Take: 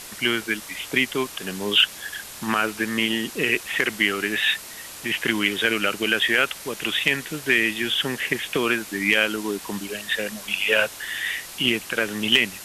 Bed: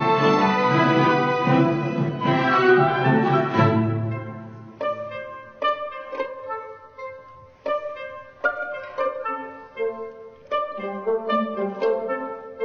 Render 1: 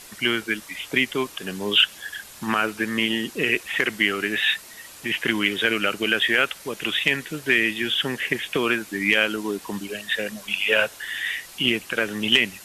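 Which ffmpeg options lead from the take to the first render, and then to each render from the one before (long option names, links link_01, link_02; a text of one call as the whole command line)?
ffmpeg -i in.wav -af "afftdn=noise_reduction=6:noise_floor=-39" out.wav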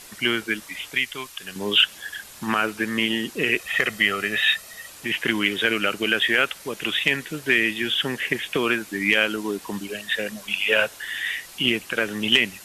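ffmpeg -i in.wav -filter_complex "[0:a]asettb=1/sr,asplit=3[link_01][link_02][link_03];[link_01]atrim=end=0.904[link_04];[link_02]atrim=start=0.9:end=1.56,asetpts=PTS-STARTPTS,afade=type=in:duration=0.004:curve=qsin,afade=type=out:start_time=0.656:duration=0.004:curve=qsin,equalizer=frequency=300:width_type=o:width=3:gain=-13.5[link_05];[link_03]atrim=start=1.556[link_06];[link_04][link_05]acrossfade=duration=0.004:curve1=hsin:curve2=qsin[link_07];[link_07][link_06]acrossfade=duration=0.004:curve1=qsin:curve2=hsin,asettb=1/sr,asplit=3[link_08][link_09][link_10];[link_08]atrim=end=3.594[link_11];[link_09]atrim=start=3.59:end=4.9,asetpts=PTS-STARTPTS,afade=type=in:duration=0.004:curve=qsin,afade=type=out:start_time=1.306:duration=0.004:curve=qsin,aecho=1:1:1.6:0.53,atrim=end_sample=57771[link_12];[link_10]atrim=start=4.896[link_13];[link_11][link_12]acrossfade=duration=0.004:curve1=hsin:curve2=qsin[link_14];[link_14][link_13]acrossfade=duration=0.004:curve1=qsin:curve2=hsin" out.wav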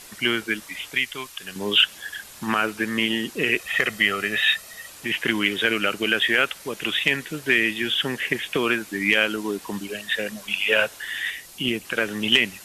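ffmpeg -i in.wav -filter_complex "[0:a]asettb=1/sr,asplit=3[link_01][link_02][link_03];[link_01]atrim=end=11.304[link_04];[link_02]atrim=start=11.3:end=11.85,asetpts=PTS-STARTPTS,afade=type=in:duration=0.004:curve=qsin,afade=type=out:start_time=0.546:duration=0.004:curve=qsin,equalizer=frequency=1700:width_type=o:width=2.7:gain=-6[link_05];[link_03]atrim=start=11.846[link_06];[link_04][link_05]acrossfade=duration=0.004:curve1=hsin:curve2=qsin[link_07];[link_07][link_06]acrossfade=duration=0.004:curve1=qsin:curve2=hsin" out.wav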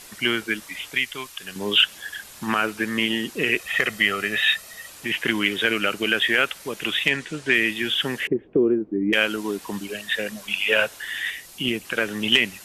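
ffmpeg -i in.wav -filter_complex "[0:a]asettb=1/sr,asplit=3[link_01][link_02][link_03];[link_01]atrim=end=7.094[link_04];[link_02]atrim=start=7.09:end=7.54,asetpts=PTS-STARTPTS,afade=type=in:duration=0.004:curve=qsin,afade=type=out:start_time=0.446:duration=0.004:curve=qsin,lowpass=frequency=9000:width=0.5412,lowpass=frequency=9000:width=1.3066[link_05];[link_03]atrim=start=7.536[link_06];[link_04][link_05]acrossfade=duration=0.004:curve1=hsin:curve2=qsin[link_07];[link_07][link_06]acrossfade=duration=0.004:curve1=qsin:curve2=hsin,asettb=1/sr,asplit=3[link_08][link_09][link_10];[link_08]atrim=end=8.274[link_11];[link_09]atrim=start=8.27:end=9.13,asetpts=PTS-STARTPTS,afade=type=in:duration=0.004:curve=qsin,afade=type=out:start_time=0.856:duration=0.004:curve=qsin,lowpass=frequency=370:width_type=q:width=2.4[link_12];[link_10]atrim=start=9.126[link_13];[link_11][link_12]acrossfade=duration=0.004:curve1=hsin:curve2=qsin[link_14];[link_14][link_13]acrossfade=duration=0.004:curve1=qsin:curve2=hsin" out.wav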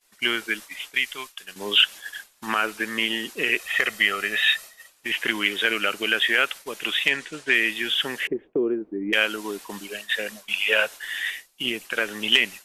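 ffmpeg -i in.wav -af "agate=range=-33dB:threshold=-31dB:ratio=3:detection=peak,equalizer=frequency=100:width=0.43:gain=-12.5" out.wav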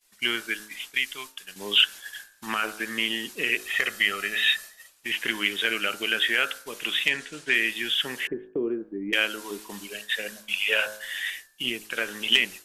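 ffmpeg -i in.wav -af "equalizer=frequency=680:width=0.31:gain=-4.5,bandreject=frequency=53.38:width_type=h:width=4,bandreject=frequency=106.76:width_type=h:width=4,bandreject=frequency=160.14:width_type=h:width=4,bandreject=frequency=213.52:width_type=h:width=4,bandreject=frequency=266.9:width_type=h:width=4,bandreject=frequency=320.28:width_type=h:width=4,bandreject=frequency=373.66:width_type=h:width=4,bandreject=frequency=427.04:width_type=h:width=4,bandreject=frequency=480.42:width_type=h:width=4,bandreject=frequency=533.8:width_type=h:width=4,bandreject=frequency=587.18:width_type=h:width=4,bandreject=frequency=640.56:width_type=h:width=4,bandreject=frequency=693.94:width_type=h:width=4,bandreject=frequency=747.32:width_type=h:width=4,bandreject=frequency=800.7:width_type=h:width=4,bandreject=frequency=854.08:width_type=h:width=4,bandreject=frequency=907.46:width_type=h:width=4,bandreject=frequency=960.84:width_type=h:width=4,bandreject=frequency=1014.22:width_type=h:width=4,bandreject=frequency=1067.6:width_type=h:width=4,bandreject=frequency=1120.98:width_type=h:width=4,bandreject=frequency=1174.36:width_type=h:width=4,bandreject=frequency=1227.74:width_type=h:width=4,bandreject=frequency=1281.12:width_type=h:width=4,bandreject=frequency=1334.5:width_type=h:width=4,bandreject=frequency=1387.88:width_type=h:width=4,bandreject=frequency=1441.26:width_type=h:width=4,bandreject=frequency=1494.64:width_type=h:width=4,bandreject=frequency=1548.02:width_type=h:width=4,bandreject=frequency=1601.4:width_type=h:width=4,bandreject=frequency=1654.78:width_type=h:width=4,bandreject=frequency=1708.16:width_type=h:width=4,bandreject=frequency=1761.54:width_type=h:width=4" out.wav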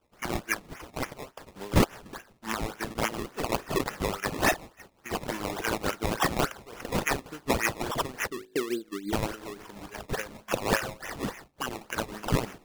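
ffmpeg -i in.wav -af "tremolo=f=5.6:d=0.68,acrusher=samples=20:mix=1:aa=0.000001:lfo=1:lforange=20:lforate=3.5" out.wav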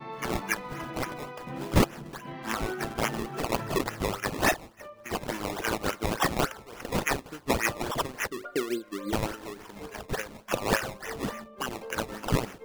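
ffmpeg -i in.wav -i bed.wav -filter_complex "[1:a]volume=-20.5dB[link_01];[0:a][link_01]amix=inputs=2:normalize=0" out.wav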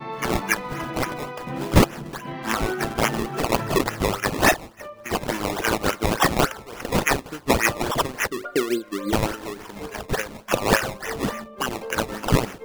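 ffmpeg -i in.wav -af "volume=7dB,alimiter=limit=-3dB:level=0:latency=1" out.wav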